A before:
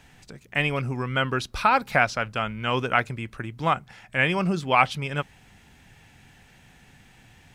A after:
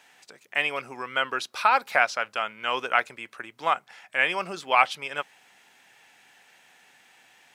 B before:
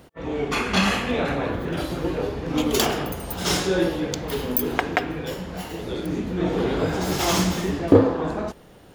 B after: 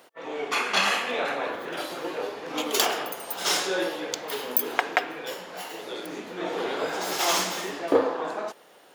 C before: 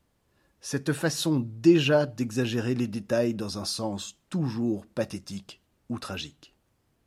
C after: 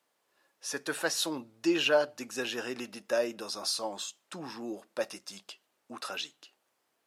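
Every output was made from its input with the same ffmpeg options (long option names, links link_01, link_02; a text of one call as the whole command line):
ffmpeg -i in.wav -af "highpass=550" out.wav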